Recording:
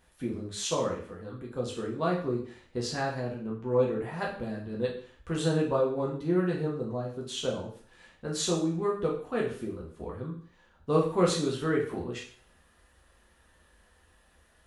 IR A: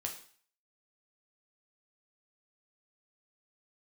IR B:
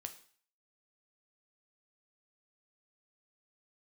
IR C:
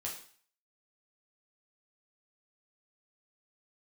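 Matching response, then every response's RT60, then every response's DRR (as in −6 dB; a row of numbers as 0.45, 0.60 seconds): C; 0.45, 0.45, 0.45 seconds; 1.0, 6.5, −3.5 decibels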